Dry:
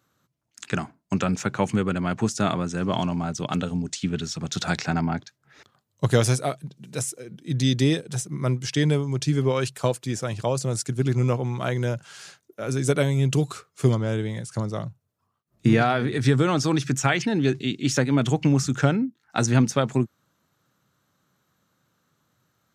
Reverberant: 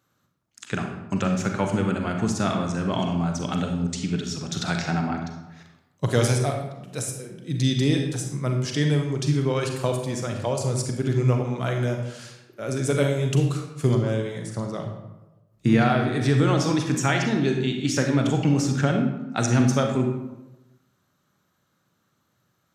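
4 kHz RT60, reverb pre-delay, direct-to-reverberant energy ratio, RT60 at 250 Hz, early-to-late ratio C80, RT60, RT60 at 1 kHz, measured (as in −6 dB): 0.60 s, 34 ms, 3.0 dB, 1.1 s, 7.0 dB, 1.0 s, 0.95 s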